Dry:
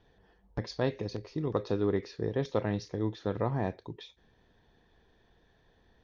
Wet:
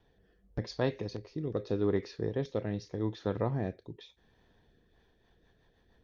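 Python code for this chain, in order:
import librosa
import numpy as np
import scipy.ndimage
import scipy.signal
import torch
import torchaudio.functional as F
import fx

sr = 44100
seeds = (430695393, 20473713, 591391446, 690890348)

y = fx.rotary_switch(x, sr, hz=0.85, then_hz=6.7, switch_at_s=4.64)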